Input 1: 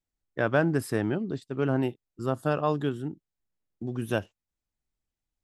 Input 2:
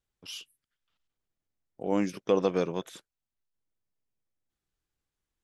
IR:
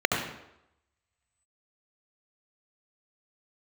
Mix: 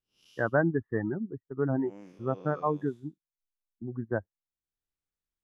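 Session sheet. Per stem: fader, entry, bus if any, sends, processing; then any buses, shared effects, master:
+1.0 dB, 0.00 s, no send, expander on every frequency bin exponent 1.5; Chebyshev low-pass 1.9 kHz, order 8; reverb removal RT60 0.89 s
-8.0 dB, 0.00 s, no send, spectral blur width 193 ms; auto duck -10 dB, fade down 0.60 s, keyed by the first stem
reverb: none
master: none

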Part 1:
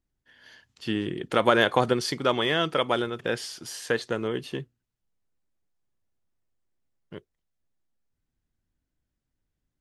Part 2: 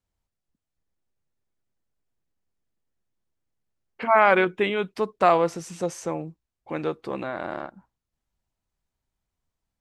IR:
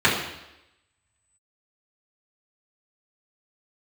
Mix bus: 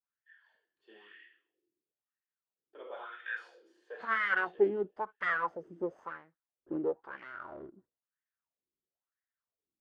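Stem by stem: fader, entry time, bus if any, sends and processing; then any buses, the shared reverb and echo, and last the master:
0.0 dB, 0.00 s, muted 1.14–2.73 s, send -7.5 dB, high-pass 320 Hz 12 dB/octave; differentiator
+3.0 dB, 0.00 s, no send, comb filter that takes the minimum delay 0.61 ms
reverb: on, RT60 0.90 s, pre-delay 3 ms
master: wah-wah 1 Hz 330–1900 Hz, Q 4.3; treble shelf 2.4 kHz -10.5 dB

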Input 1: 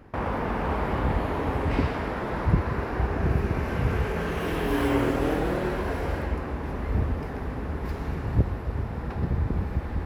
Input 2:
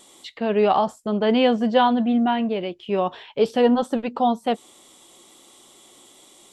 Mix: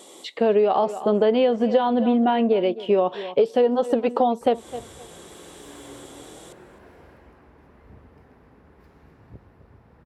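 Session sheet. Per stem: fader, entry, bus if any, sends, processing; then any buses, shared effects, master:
-19.5 dB, 0.95 s, muted 2.01–4.41 s, no send, echo send -10 dB, none
+2.5 dB, 0.00 s, no send, echo send -20.5 dB, peaking EQ 470 Hz +9.5 dB 1.2 oct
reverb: none
echo: feedback delay 259 ms, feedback 22%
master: high-pass 120 Hz 6 dB/octave; compression 16:1, threshold -15 dBFS, peak gain reduction 14 dB

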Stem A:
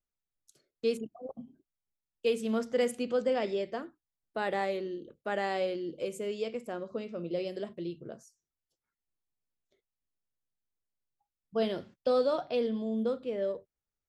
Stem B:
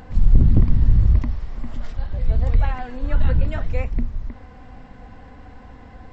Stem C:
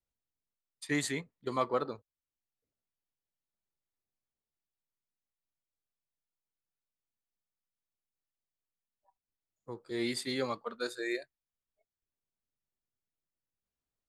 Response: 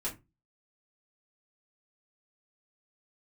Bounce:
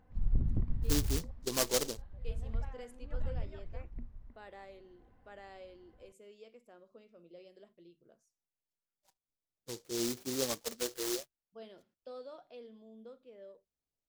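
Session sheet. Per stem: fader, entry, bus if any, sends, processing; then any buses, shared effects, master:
-19.0 dB, 0.00 s, no send, bass shelf 160 Hz -11 dB
-15.5 dB, 0.00 s, no send, treble shelf 3.3 kHz -10 dB; upward expansion 1.5:1, over -22 dBFS
+1.0 dB, 0.00 s, no send, rippled Chebyshev low-pass 2.3 kHz, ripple 3 dB; delay time shaken by noise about 5.3 kHz, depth 0.22 ms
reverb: none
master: none

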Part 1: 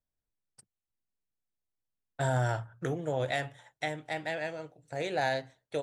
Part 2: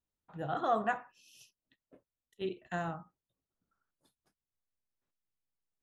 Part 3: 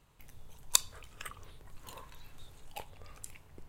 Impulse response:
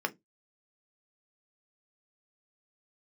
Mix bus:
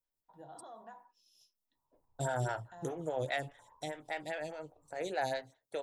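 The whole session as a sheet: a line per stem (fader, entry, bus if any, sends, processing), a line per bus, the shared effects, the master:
-2.5 dB, 0.00 s, no bus, no send, lamp-driven phase shifter 4.9 Hz
-3.0 dB, 0.00 s, bus A, send -18.5 dB, high-pass 150 Hz; resonant high shelf 3.2 kHz +7 dB, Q 3; compression 3:1, threshold -39 dBFS, peak gain reduction 10.5 dB
-13.0 dB, 1.75 s, bus A, no send, none
bus A: 0.0 dB, four-pole ladder low-pass 1 kHz, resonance 80%; peak limiter -45.5 dBFS, peak gain reduction 8 dB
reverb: on, RT60 0.15 s, pre-delay 3 ms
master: treble shelf 4.6 kHz +8 dB

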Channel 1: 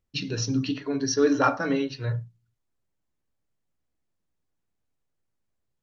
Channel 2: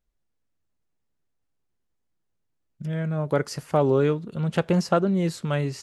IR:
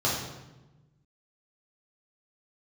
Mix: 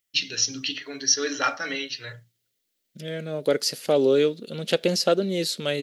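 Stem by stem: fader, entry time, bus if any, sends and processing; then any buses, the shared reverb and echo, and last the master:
-2.5 dB, 0.00 s, no send, graphic EQ with 31 bands 1 kHz -8 dB, 2 kHz +7 dB, 3.15 kHz +7 dB
-2.0 dB, 0.15 s, no send, graphic EQ 250/500/1000/4000/8000 Hz +9/+11/-11/+9/-6 dB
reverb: none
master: tilt EQ +4.5 dB/octave

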